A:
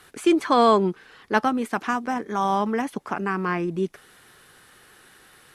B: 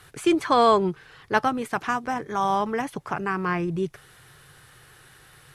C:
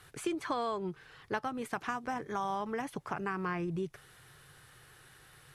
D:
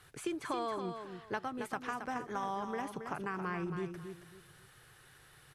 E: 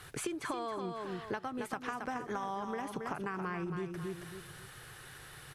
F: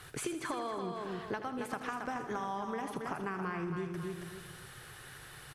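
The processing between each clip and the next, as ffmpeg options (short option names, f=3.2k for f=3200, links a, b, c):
-af "lowshelf=f=170:t=q:w=3:g=6.5"
-af "acompressor=threshold=-25dB:ratio=6,volume=-6dB"
-af "aecho=1:1:273|546|819:0.422|0.11|0.0285,volume=-3dB"
-af "acompressor=threshold=-44dB:ratio=6,volume=9dB"
-af "aecho=1:1:81|162|243|324|405|486:0.282|0.161|0.0916|0.0522|0.0298|0.017"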